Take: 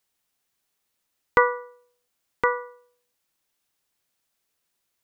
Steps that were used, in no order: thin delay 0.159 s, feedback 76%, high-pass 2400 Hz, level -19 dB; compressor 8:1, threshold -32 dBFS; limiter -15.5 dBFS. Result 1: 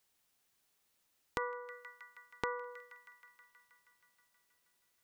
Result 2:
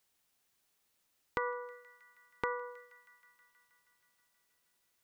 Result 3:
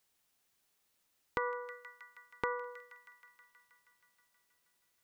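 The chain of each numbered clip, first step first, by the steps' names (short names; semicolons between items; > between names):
thin delay > compressor > limiter; limiter > thin delay > compressor; thin delay > limiter > compressor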